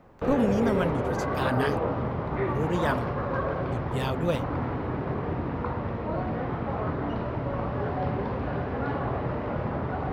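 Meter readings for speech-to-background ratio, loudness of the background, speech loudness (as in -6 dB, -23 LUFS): -0.5 dB, -30.0 LUFS, -30.5 LUFS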